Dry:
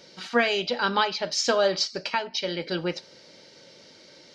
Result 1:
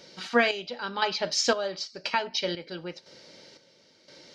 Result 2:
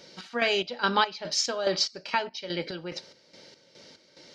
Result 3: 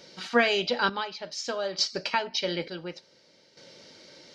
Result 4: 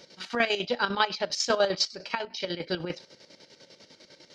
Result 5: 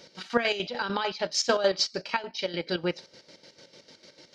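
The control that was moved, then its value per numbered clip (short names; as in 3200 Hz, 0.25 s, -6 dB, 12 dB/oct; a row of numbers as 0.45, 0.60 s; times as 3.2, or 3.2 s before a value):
chopper, rate: 0.98, 2.4, 0.56, 10, 6.7 Hz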